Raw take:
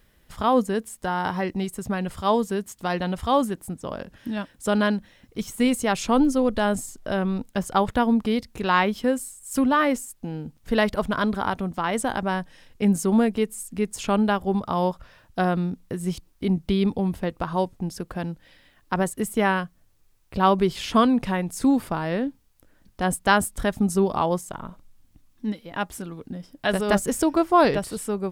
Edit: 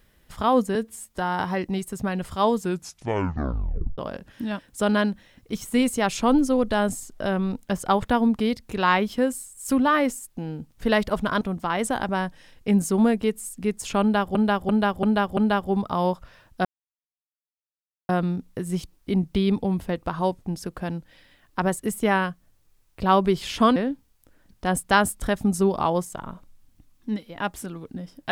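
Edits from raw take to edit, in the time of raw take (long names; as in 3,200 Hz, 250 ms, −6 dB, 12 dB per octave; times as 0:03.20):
0:00.75–0:01.03: time-stretch 1.5×
0:02.44: tape stop 1.40 s
0:11.27–0:11.55: remove
0:14.15–0:14.49: repeat, 5 plays
0:15.43: splice in silence 1.44 s
0:21.10–0:22.12: remove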